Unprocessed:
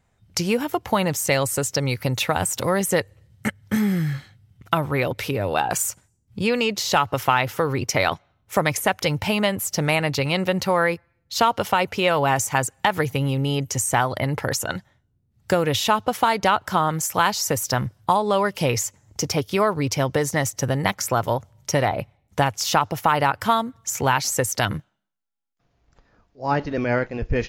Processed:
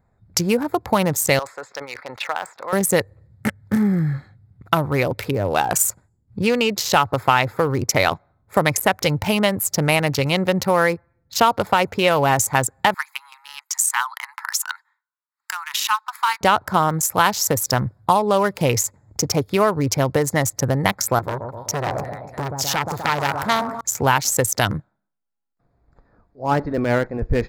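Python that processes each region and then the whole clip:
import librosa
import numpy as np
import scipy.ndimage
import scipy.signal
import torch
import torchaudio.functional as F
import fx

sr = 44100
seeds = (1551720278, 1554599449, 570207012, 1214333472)

y = fx.chain(x, sr, fx.highpass(hz=950.0, slope=12),
    fx.air_absorb(metres=210.0),
    fx.sustainer(db_per_s=94.0), at=(1.39, 2.73))
y = fx.chain(y, sr, fx.steep_highpass(hz=920.0, slope=72),
    fx.notch(hz=3500.0, q=19.0), at=(12.94, 16.41))
y = fx.chain(y, sr, fx.echo_split(split_hz=1100.0, low_ms=126, high_ms=294, feedback_pct=52, wet_db=-9),
    fx.transformer_sat(knee_hz=2600.0), at=(21.19, 23.81))
y = fx.wiener(y, sr, points=15)
y = fx.high_shelf(y, sr, hz=9100.0, db=10.5)
y = y * 10.0 ** (3.0 / 20.0)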